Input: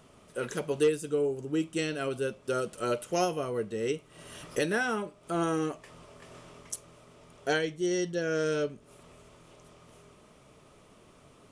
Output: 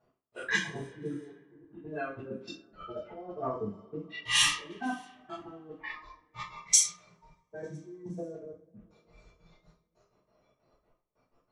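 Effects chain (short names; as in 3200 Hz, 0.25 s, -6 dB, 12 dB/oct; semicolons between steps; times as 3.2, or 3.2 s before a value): treble ducked by the level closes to 440 Hz, closed at -26.5 dBFS; step gate "x...x.x.xxx.xx." 187 bpm -60 dB; dynamic EQ 120 Hz, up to -6 dB, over -58 dBFS, Q 3.3; spectral noise reduction 22 dB; negative-ratio compressor -40 dBFS, ratio -0.5; two-slope reverb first 0.4 s, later 3.3 s, from -28 dB, DRR -10 dB; low-pass opened by the level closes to 620 Hz, open at -27 dBFS; tilt shelf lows -10 dB, about 810 Hz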